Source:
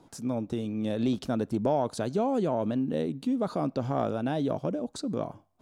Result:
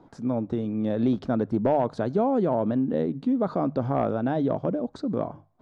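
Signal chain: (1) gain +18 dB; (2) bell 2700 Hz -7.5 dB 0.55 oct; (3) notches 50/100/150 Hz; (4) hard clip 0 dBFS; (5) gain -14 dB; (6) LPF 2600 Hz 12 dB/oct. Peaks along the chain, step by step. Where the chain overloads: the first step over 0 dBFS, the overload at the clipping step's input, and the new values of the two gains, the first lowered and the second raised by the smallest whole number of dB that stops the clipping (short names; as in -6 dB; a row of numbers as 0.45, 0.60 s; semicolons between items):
+3.5, +3.5, +4.0, 0.0, -14.0, -13.5 dBFS; step 1, 4.0 dB; step 1 +14 dB, step 5 -10 dB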